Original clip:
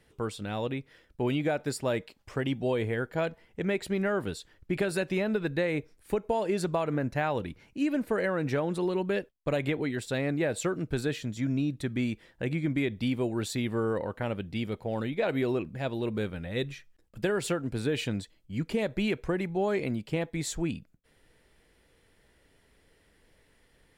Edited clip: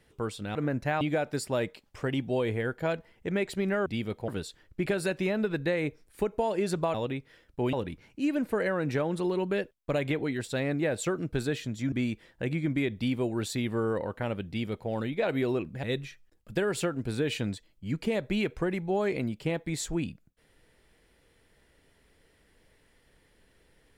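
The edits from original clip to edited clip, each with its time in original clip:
0:00.55–0:01.34: swap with 0:06.85–0:07.31
0:11.50–0:11.92: remove
0:14.48–0:14.90: duplicate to 0:04.19
0:15.83–0:16.50: remove

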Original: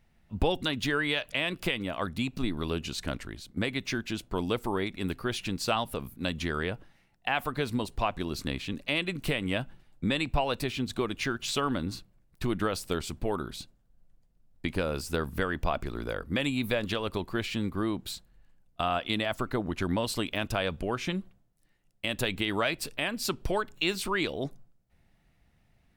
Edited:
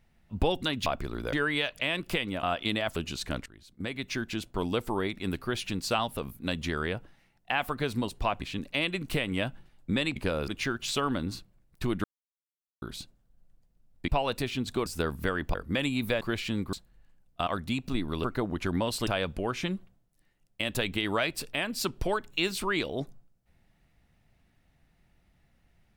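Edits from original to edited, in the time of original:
0:01.96–0:02.73: swap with 0:18.87–0:19.40
0:03.23–0:04.04: fade in, from −17.5 dB
0:08.18–0:08.55: remove
0:10.30–0:11.08: swap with 0:14.68–0:15.00
0:12.64–0:13.42: silence
0:15.68–0:16.15: move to 0:00.86
0:16.82–0:17.27: remove
0:17.79–0:18.13: remove
0:20.23–0:20.51: remove

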